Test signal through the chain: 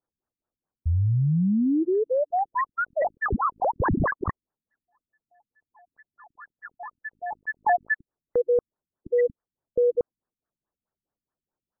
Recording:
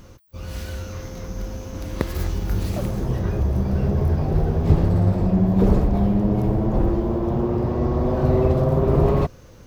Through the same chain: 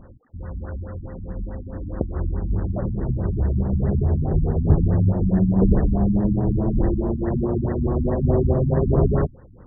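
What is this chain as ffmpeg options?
ffmpeg -i in.wav -af "acrusher=samples=14:mix=1:aa=0.000001:lfo=1:lforange=8.4:lforate=2.1,afftfilt=real='re*lt(b*sr/1024,280*pow(2000/280,0.5+0.5*sin(2*PI*4.7*pts/sr)))':imag='im*lt(b*sr/1024,280*pow(2000/280,0.5+0.5*sin(2*PI*4.7*pts/sr)))':win_size=1024:overlap=0.75" out.wav

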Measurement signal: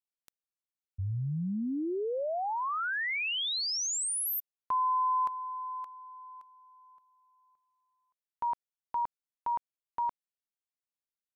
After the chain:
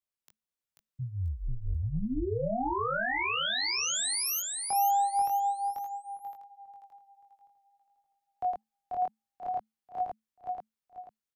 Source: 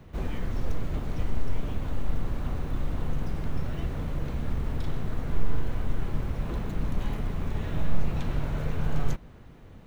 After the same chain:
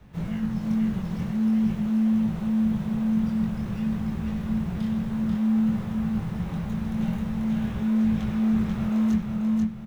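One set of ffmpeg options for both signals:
ffmpeg -i in.wav -filter_complex "[0:a]flanger=delay=18.5:depth=5.1:speed=0.51,aecho=1:1:488|976|1464|1952:0.668|0.221|0.0728|0.024,acrossover=split=360|1900[link_01][link_02][link_03];[link_01]asoftclip=type=tanh:threshold=-23.5dB[link_04];[link_04][link_02][link_03]amix=inputs=3:normalize=0,afreqshift=-220,volume=3dB" out.wav

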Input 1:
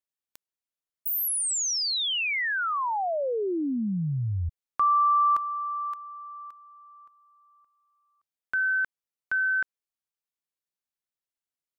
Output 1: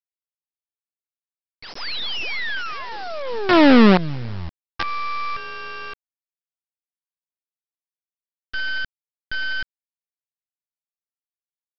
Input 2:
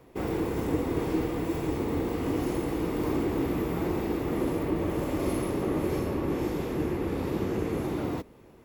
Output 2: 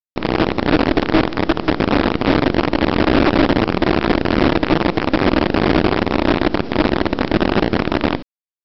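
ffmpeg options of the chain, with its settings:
ffmpeg -i in.wav -filter_complex "[0:a]afwtdn=0.0355,firequalizer=gain_entry='entry(110,0);entry(220,13);entry(680,-2);entry(1000,-5);entry(1600,5)':delay=0.05:min_phase=1,aeval=exprs='(tanh(7.94*val(0)+0.55)-tanh(0.55))/7.94':channel_layout=same,aresample=11025,acrusher=bits=4:dc=4:mix=0:aa=0.000001,aresample=44100,acrossover=split=4100[link_01][link_02];[link_02]acompressor=threshold=-46dB:ratio=4:attack=1:release=60[link_03];[link_01][link_03]amix=inputs=2:normalize=0,volume=7dB" out.wav

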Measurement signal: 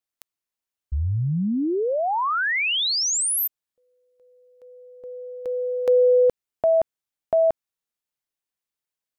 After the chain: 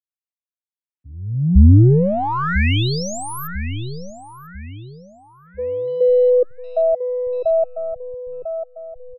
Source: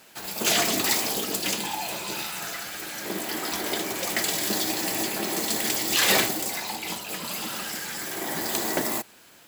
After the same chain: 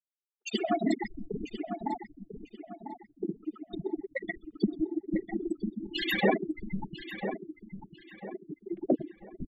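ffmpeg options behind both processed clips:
ffmpeg -i in.wav -filter_complex "[0:a]afftfilt=real='re*gte(hypot(re,im),0.2)':imag='im*gte(hypot(re,im),0.2)':win_size=1024:overlap=0.75,asplit=2[link_01][link_02];[link_02]adelay=997,lowpass=frequency=2300:poles=1,volume=-9dB,asplit=2[link_03][link_04];[link_04]adelay=997,lowpass=frequency=2300:poles=1,volume=0.39,asplit=2[link_05][link_06];[link_06]adelay=997,lowpass=frequency=2300:poles=1,volume=0.39,asplit=2[link_07][link_08];[link_08]adelay=997,lowpass=frequency=2300:poles=1,volume=0.39[link_09];[link_03][link_05][link_07][link_09]amix=inputs=4:normalize=0[link_10];[link_01][link_10]amix=inputs=2:normalize=0,aeval=exprs='0.251*(cos(1*acos(clip(val(0)/0.251,-1,1)))-cos(1*PI/2))+0.00282*(cos(8*acos(clip(val(0)/0.251,-1,1)))-cos(8*PI/2))':channel_layout=same,bass=frequency=250:gain=14,treble=frequency=4000:gain=-12,acrossover=split=170|2000[link_11][link_12][link_13];[link_12]adelay=130[link_14];[link_11]adelay=630[link_15];[link_15][link_14][link_13]amix=inputs=3:normalize=0,volume=2dB" out.wav

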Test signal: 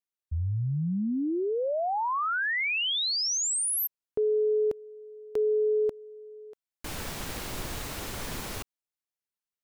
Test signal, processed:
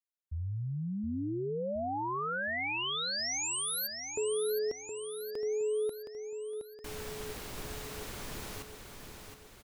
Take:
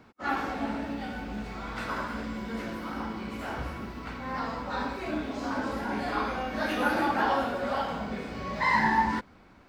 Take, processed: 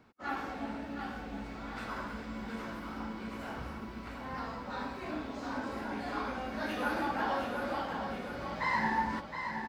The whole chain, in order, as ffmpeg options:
ffmpeg -i in.wav -af "aecho=1:1:718|1436|2154|2872|3590|4308:0.447|0.228|0.116|0.0593|0.0302|0.0154,volume=-7dB" out.wav

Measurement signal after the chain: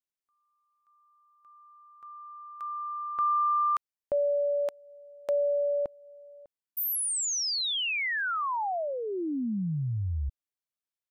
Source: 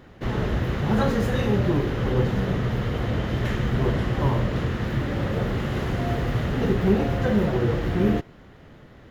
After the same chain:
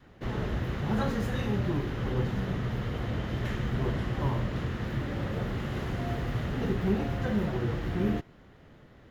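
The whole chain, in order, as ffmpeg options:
ffmpeg -i in.wav -af "adynamicequalizer=threshold=0.02:dfrequency=490:dqfactor=2:tfrequency=490:tqfactor=2:attack=5:release=100:ratio=0.375:range=3:mode=cutabove:tftype=bell,volume=-6.5dB" out.wav

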